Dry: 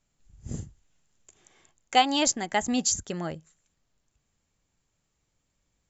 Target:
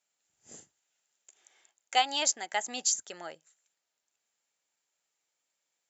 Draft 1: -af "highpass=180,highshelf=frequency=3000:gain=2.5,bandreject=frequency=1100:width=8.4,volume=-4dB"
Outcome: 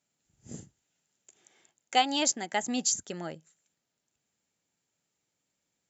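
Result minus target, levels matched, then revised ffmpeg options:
250 Hz band +13.0 dB
-af "highpass=610,highshelf=frequency=3000:gain=2.5,bandreject=frequency=1100:width=8.4,volume=-4dB"

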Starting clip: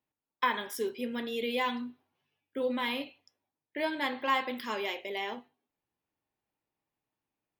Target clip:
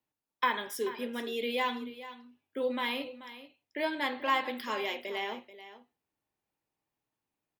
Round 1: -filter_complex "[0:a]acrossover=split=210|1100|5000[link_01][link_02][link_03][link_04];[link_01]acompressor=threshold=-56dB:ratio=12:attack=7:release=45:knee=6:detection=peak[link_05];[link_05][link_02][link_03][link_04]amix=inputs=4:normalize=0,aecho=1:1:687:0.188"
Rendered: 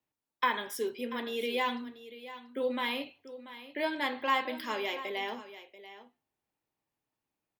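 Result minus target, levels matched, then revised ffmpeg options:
echo 252 ms late
-filter_complex "[0:a]acrossover=split=210|1100|5000[link_01][link_02][link_03][link_04];[link_01]acompressor=threshold=-56dB:ratio=12:attack=7:release=45:knee=6:detection=peak[link_05];[link_05][link_02][link_03][link_04]amix=inputs=4:normalize=0,aecho=1:1:435:0.188"

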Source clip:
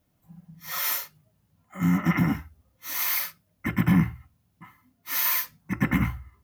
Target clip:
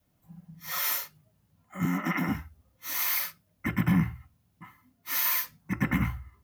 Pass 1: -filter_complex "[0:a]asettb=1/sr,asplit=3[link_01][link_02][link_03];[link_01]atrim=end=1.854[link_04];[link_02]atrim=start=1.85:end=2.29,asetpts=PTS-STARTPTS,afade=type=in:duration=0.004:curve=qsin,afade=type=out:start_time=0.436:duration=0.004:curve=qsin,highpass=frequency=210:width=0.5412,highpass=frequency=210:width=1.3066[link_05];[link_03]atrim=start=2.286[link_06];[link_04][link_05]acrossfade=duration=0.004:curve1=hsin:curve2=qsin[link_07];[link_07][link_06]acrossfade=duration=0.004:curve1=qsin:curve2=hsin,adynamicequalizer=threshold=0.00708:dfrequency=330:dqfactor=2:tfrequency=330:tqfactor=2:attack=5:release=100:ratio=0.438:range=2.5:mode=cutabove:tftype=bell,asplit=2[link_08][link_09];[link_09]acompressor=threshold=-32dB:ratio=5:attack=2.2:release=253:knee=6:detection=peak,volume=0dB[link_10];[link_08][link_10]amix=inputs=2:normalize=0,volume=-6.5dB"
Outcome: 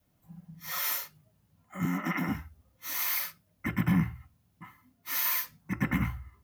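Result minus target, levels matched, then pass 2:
downward compressor: peak gain reduction +7.5 dB
-filter_complex "[0:a]asettb=1/sr,asplit=3[link_01][link_02][link_03];[link_01]atrim=end=1.854[link_04];[link_02]atrim=start=1.85:end=2.29,asetpts=PTS-STARTPTS,afade=type=in:duration=0.004:curve=qsin,afade=type=out:start_time=0.436:duration=0.004:curve=qsin,highpass=frequency=210:width=0.5412,highpass=frequency=210:width=1.3066[link_05];[link_03]atrim=start=2.286[link_06];[link_04][link_05]acrossfade=duration=0.004:curve1=hsin:curve2=qsin[link_07];[link_07][link_06]acrossfade=duration=0.004:curve1=qsin:curve2=hsin,adynamicequalizer=threshold=0.00708:dfrequency=330:dqfactor=2:tfrequency=330:tqfactor=2:attack=5:release=100:ratio=0.438:range=2.5:mode=cutabove:tftype=bell,asplit=2[link_08][link_09];[link_09]acompressor=threshold=-22.5dB:ratio=5:attack=2.2:release=253:knee=6:detection=peak,volume=0dB[link_10];[link_08][link_10]amix=inputs=2:normalize=0,volume=-6.5dB"

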